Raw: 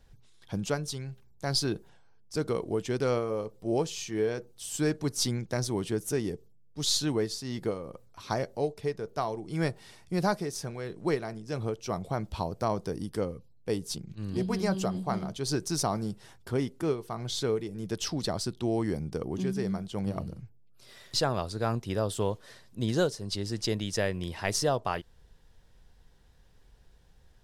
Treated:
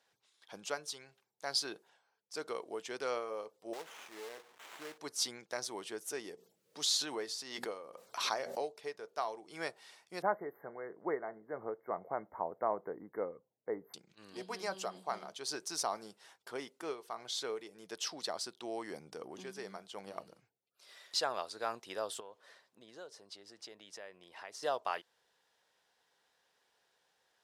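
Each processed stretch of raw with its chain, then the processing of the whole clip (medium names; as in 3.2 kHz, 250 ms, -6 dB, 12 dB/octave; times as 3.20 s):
3.73–4.98 s: compression 1.5:1, threshold -48 dBFS + companded quantiser 4-bit + sliding maximum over 9 samples
6.33–8.80 s: hum notches 60/120/180/240 Hz + swell ahead of each attack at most 38 dB/s
10.22–13.94 s: brick-wall FIR band-stop 2.2–12 kHz + tilt shelf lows +5.5 dB, about 1.2 kHz
18.90–19.45 s: high-pass 91 Hz 6 dB/octave + bass shelf 150 Hz +10.5 dB + transient shaper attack -5 dB, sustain +3 dB
22.20–24.63 s: treble shelf 2.6 kHz -8 dB + compression 3:1, threshold -40 dBFS
whole clip: high-pass 630 Hz 12 dB/octave; treble shelf 11 kHz -6.5 dB; trim -3.5 dB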